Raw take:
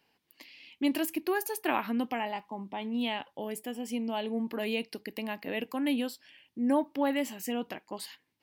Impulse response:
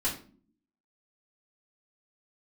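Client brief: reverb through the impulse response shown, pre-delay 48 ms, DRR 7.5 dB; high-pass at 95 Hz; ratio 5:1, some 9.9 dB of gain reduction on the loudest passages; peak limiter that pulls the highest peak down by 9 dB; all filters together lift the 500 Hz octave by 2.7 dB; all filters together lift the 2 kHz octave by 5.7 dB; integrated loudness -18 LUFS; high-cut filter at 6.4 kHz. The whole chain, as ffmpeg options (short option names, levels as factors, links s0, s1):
-filter_complex "[0:a]highpass=95,lowpass=6400,equalizer=f=500:t=o:g=3,equalizer=f=2000:t=o:g=7,acompressor=threshold=0.0251:ratio=5,alimiter=level_in=1.78:limit=0.0631:level=0:latency=1,volume=0.562,asplit=2[s0][s1];[1:a]atrim=start_sample=2205,adelay=48[s2];[s1][s2]afir=irnorm=-1:irlink=0,volume=0.2[s3];[s0][s3]amix=inputs=2:normalize=0,volume=10.6"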